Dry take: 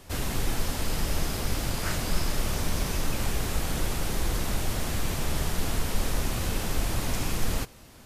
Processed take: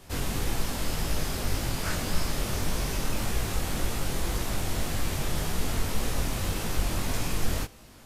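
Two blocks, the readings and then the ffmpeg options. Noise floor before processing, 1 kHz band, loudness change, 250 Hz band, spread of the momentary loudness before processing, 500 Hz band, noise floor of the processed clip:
-50 dBFS, -0.5 dB, -0.5 dB, -0.5 dB, 1 LU, -0.5 dB, -50 dBFS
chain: -af "flanger=delay=17.5:depth=5.1:speed=1.8,volume=2.5dB"

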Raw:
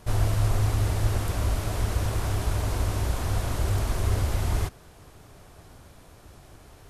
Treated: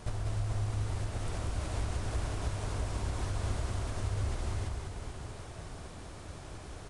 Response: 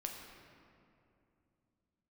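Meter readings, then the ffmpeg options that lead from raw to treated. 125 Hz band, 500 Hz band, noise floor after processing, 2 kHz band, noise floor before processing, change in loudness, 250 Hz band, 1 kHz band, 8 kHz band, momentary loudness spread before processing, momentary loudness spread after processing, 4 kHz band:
-8.5 dB, -7.5 dB, -47 dBFS, -7.5 dB, -51 dBFS, -10.0 dB, -7.5 dB, -7.5 dB, -8.5 dB, 4 LU, 12 LU, -7.5 dB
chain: -af "acompressor=threshold=-34dB:ratio=12,aecho=1:1:190|437|758.1|1176|1718:0.631|0.398|0.251|0.158|0.1,aresample=22050,aresample=44100,volume=2dB"

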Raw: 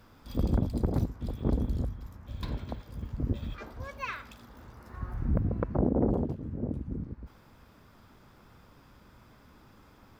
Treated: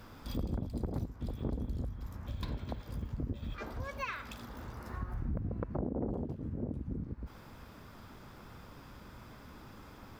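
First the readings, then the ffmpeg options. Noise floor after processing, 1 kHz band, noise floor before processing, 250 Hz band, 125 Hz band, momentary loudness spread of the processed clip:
-53 dBFS, -3.5 dB, -58 dBFS, -7.0 dB, -6.5 dB, 15 LU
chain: -af "acompressor=threshold=-42dB:ratio=3,volume=5dB"

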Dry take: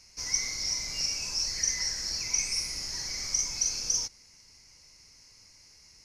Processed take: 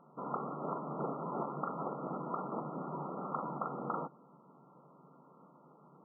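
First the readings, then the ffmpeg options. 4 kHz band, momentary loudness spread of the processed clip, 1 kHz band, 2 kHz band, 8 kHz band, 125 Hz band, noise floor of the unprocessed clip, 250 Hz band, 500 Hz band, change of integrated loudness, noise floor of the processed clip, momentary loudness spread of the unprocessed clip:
under -40 dB, 3 LU, +14.5 dB, under -20 dB, under -40 dB, +4.0 dB, -57 dBFS, +12.5 dB, +14.0 dB, -11.0 dB, -62 dBFS, 5 LU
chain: -af "aresample=16000,asoftclip=type=hard:threshold=-29.5dB,aresample=44100,afftfilt=real='re*between(b*sr/4096,130,1400)':imag='im*between(b*sr/4096,130,1400)':win_size=4096:overlap=0.75,volume=12dB"

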